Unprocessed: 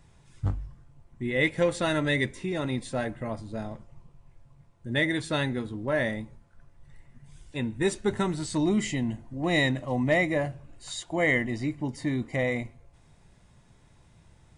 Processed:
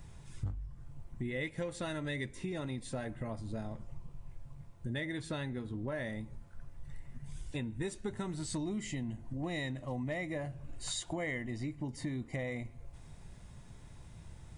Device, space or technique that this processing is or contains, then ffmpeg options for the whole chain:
ASMR close-microphone chain: -filter_complex "[0:a]asettb=1/sr,asplit=3[a][b][c];[a]atrim=end=5.004[d];[b]atrim=start=5:end=5.92,asetpts=PTS-STARTPTS,afade=t=in:d=0.004:c=qsin,afade=t=out:st=0.916:d=0.004:c=qsin,highshelf=f=4.7k:g=-5[e];[c]atrim=start=5.916[f];[d][e]acrossfade=d=0.004:c1=hsin:c2=qsin[g];[g][f]acrossfade=d=0.004:c1=qsin:c2=hsin,lowshelf=f=140:g=7,acompressor=threshold=-38dB:ratio=5,highshelf=f=9.3k:g=6.5,volume=1.5dB"

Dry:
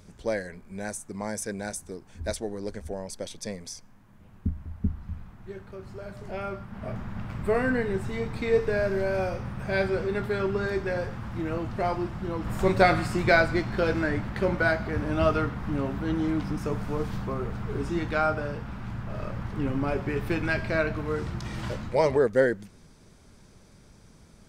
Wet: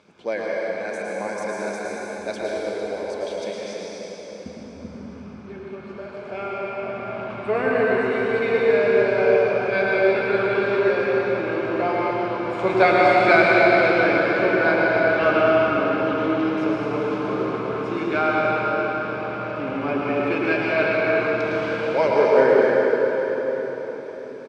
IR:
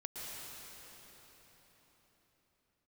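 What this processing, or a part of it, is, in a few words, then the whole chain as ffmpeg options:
station announcement: -filter_complex "[0:a]highpass=320,lowpass=3.7k,equalizer=f=2.3k:t=o:w=0.5:g=5,bandreject=f=1.9k:w=6.4,aecho=1:1:107.9|151.6:0.355|0.282[a];[1:a]atrim=start_sample=2205[b];[a][b]afir=irnorm=-1:irlink=0,volume=8dB"

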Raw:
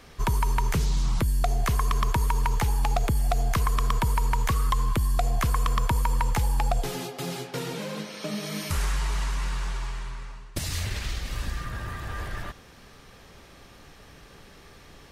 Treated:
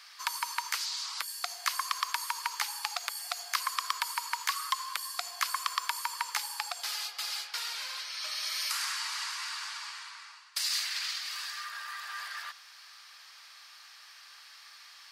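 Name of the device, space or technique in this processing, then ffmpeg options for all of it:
headphones lying on a table: -af "highpass=f=1.1k:w=0.5412,highpass=f=1.1k:w=1.3066,equalizer=f=4.7k:t=o:w=0.41:g=10"

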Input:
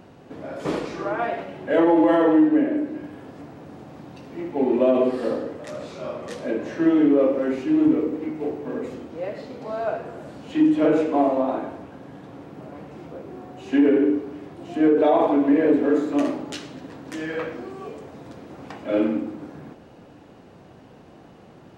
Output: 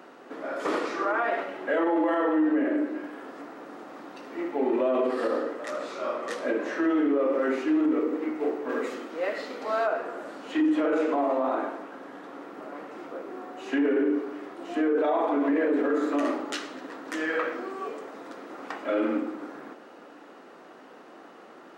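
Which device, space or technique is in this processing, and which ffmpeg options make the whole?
laptop speaker: -filter_complex "[0:a]highpass=f=270:w=0.5412,highpass=f=270:w=1.3066,equalizer=f=1.3k:t=o:w=0.59:g=8.5,equalizer=f=1.9k:t=o:w=0.21:g=4.5,alimiter=limit=-17.5dB:level=0:latency=1:release=50,asplit=3[a][b][c];[a]afade=t=out:st=8.68:d=0.02[d];[b]adynamicequalizer=threshold=0.00794:dfrequency=1500:dqfactor=0.7:tfrequency=1500:tqfactor=0.7:attack=5:release=100:ratio=0.375:range=3:mode=boostabove:tftype=highshelf,afade=t=in:st=8.68:d=0.02,afade=t=out:st=9.85:d=0.02[e];[c]afade=t=in:st=9.85:d=0.02[f];[d][e][f]amix=inputs=3:normalize=0"

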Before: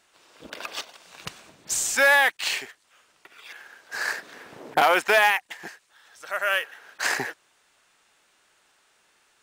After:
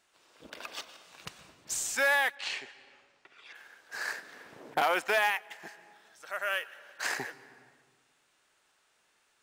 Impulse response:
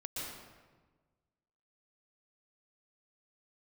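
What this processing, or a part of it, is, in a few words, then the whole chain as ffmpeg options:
compressed reverb return: -filter_complex "[0:a]asplit=2[a][b];[1:a]atrim=start_sample=2205[c];[b][c]afir=irnorm=-1:irlink=0,acompressor=threshold=-30dB:ratio=10,volume=-11dB[d];[a][d]amix=inputs=2:normalize=0,asettb=1/sr,asplit=3[e][f][g];[e]atrim=end=2.354[h];[f]atrim=start=2.35:end=3.55,asetpts=PTS-STARTPTS,afade=t=in:d=0.004:c=qsin,afade=t=out:st=1.196:d=0.004:c=qsin,lowpass=5.7k[i];[g]atrim=start=3.546[j];[h][i]acrossfade=d=0.004:c1=hsin:c2=qsin[k];[k][j]acrossfade=d=0.004:c1=qsin:c2=hsin,volume=-8.5dB"

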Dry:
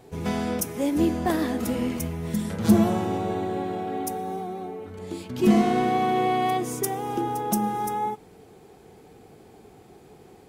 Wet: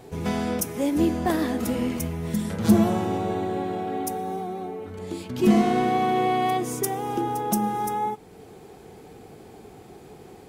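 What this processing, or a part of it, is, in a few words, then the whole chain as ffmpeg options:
parallel compression: -filter_complex "[0:a]asplit=2[a][b];[b]acompressor=threshold=-44dB:ratio=6,volume=-3dB[c];[a][c]amix=inputs=2:normalize=0"

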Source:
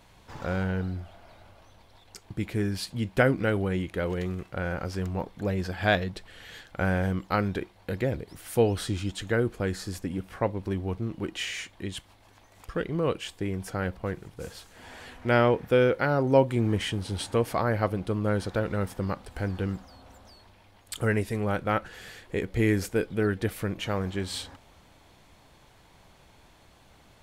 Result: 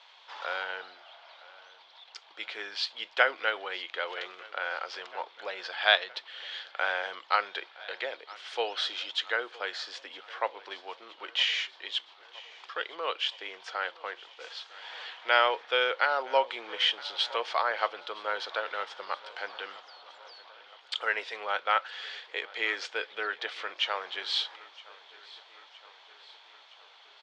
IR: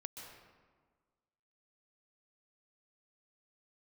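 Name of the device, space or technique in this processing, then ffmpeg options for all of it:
phone earpiece: -filter_complex "[0:a]highpass=450,equalizer=f=910:t=q:w=4:g=3,equalizer=f=1.3k:t=q:w=4:g=3,equalizer=f=3.3k:t=q:w=4:g=6,lowpass=f=4.4k:w=0.5412,lowpass=f=4.4k:w=1.3066,aemphasis=mode=production:type=riaa,acrossover=split=430 7600:gain=0.0891 1 0.0891[a][b][c];[a][b][c]amix=inputs=3:normalize=0,bandreject=f=50:t=h:w=6,bandreject=f=100:t=h:w=6,bandreject=f=150:t=h:w=6,aecho=1:1:966|1932|2898|3864|4830:0.0891|0.0535|0.0321|0.0193|0.0116"

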